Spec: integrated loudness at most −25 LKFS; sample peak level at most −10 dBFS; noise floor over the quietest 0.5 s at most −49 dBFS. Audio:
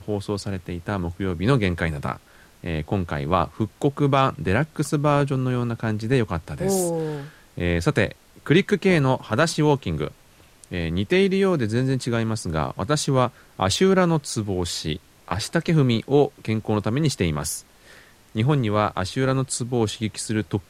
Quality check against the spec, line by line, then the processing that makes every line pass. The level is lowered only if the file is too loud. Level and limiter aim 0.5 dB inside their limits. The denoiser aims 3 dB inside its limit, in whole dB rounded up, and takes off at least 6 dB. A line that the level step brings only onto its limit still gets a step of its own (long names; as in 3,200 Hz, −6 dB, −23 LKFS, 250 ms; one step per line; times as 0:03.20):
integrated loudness −23.0 LKFS: out of spec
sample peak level −5.5 dBFS: out of spec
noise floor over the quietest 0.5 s −53 dBFS: in spec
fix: level −2.5 dB
brickwall limiter −10.5 dBFS